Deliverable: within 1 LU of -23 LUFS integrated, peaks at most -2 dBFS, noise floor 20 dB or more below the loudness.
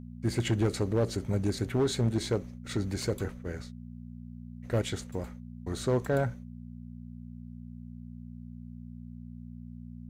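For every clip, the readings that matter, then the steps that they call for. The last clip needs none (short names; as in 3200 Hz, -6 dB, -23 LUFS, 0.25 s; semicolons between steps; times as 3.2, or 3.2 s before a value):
clipped 0.7%; flat tops at -20.5 dBFS; hum 60 Hz; harmonics up to 240 Hz; hum level -43 dBFS; loudness -31.5 LUFS; peak -20.5 dBFS; loudness target -23.0 LUFS
-> clip repair -20.5 dBFS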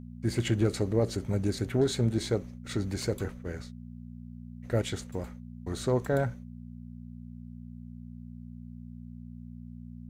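clipped 0.0%; hum 60 Hz; harmonics up to 240 Hz; hum level -43 dBFS
-> de-hum 60 Hz, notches 4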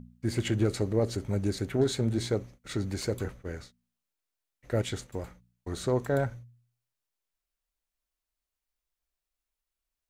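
hum none; loudness -31.0 LUFS; peak -15.0 dBFS; loudness target -23.0 LUFS
-> gain +8 dB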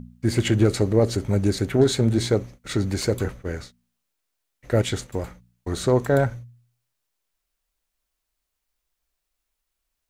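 loudness -23.0 LUFS; peak -7.0 dBFS; noise floor -81 dBFS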